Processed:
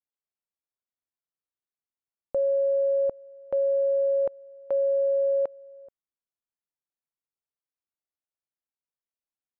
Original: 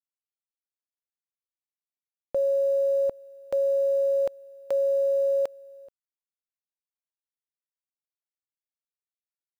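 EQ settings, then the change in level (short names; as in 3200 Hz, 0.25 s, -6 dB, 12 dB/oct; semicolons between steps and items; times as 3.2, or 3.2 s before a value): LPF 1400 Hz 12 dB/oct; 0.0 dB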